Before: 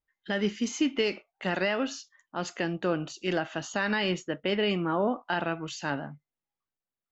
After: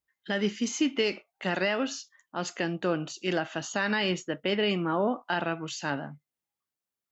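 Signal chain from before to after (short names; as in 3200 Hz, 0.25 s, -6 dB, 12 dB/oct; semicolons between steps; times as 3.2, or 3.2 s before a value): HPF 65 Hz; high shelf 5000 Hz +4.5 dB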